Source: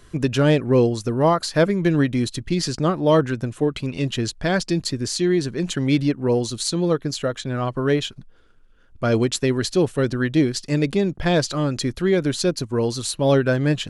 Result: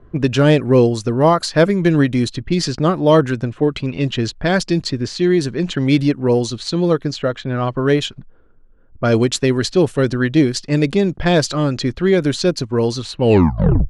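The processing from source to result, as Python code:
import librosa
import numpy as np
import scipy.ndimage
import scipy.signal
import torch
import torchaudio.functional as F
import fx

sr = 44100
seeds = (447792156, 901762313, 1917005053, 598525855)

y = fx.tape_stop_end(x, sr, length_s=0.74)
y = fx.env_lowpass(y, sr, base_hz=800.0, full_db=-16.0)
y = y * 10.0 ** (4.5 / 20.0)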